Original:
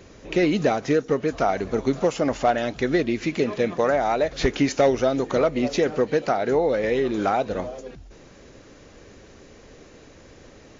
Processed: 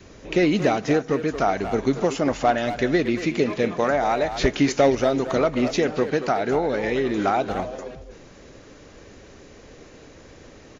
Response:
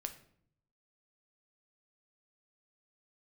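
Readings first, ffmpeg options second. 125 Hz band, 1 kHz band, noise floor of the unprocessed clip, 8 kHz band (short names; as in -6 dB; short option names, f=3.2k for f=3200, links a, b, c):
+1.5 dB, +1.5 dB, -49 dBFS, n/a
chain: -filter_complex "[0:a]adynamicequalizer=threshold=0.0178:dfrequency=510:dqfactor=3.3:tfrequency=510:tqfactor=3.3:attack=5:release=100:ratio=0.375:range=3.5:mode=cutabove:tftype=bell,asplit=2[a][b];[b]adelay=230,highpass=300,lowpass=3.4k,asoftclip=type=hard:threshold=-18dB,volume=-9dB[c];[a][c]amix=inputs=2:normalize=0,asplit=2[d][e];[1:a]atrim=start_sample=2205[f];[e][f]afir=irnorm=-1:irlink=0,volume=-12.5dB[g];[d][g]amix=inputs=2:normalize=0"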